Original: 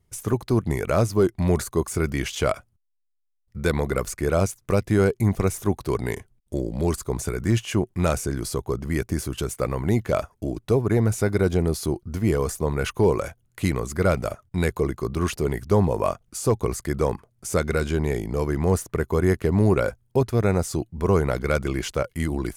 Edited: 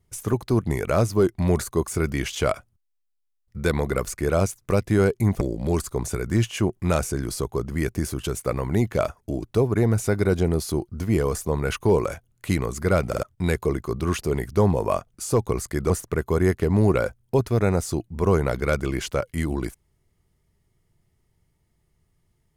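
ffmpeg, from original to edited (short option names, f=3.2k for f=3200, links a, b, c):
-filter_complex "[0:a]asplit=6[a][b][c][d][e][f];[a]atrim=end=5.412[g];[b]atrim=start=6.548:end=14.272[h];[c]atrim=start=14.218:end=14.272[i];[d]atrim=start=14.218:end=14.272[j];[e]atrim=start=14.368:end=17.042[k];[f]atrim=start=18.718[l];[g][h]acrossfade=d=0.004:c1=hsin:c2=hsin[m];[m][i]acrossfade=d=0.004:c1=hsin:c2=hsin[n];[n][j]acrossfade=d=0.004:c1=hsin:c2=hsin[o];[o][k]acrossfade=d=0.004:c1=hsin:c2=hsin[p];[p][l]acrossfade=d=0.004:c1=hsin:c2=hsin"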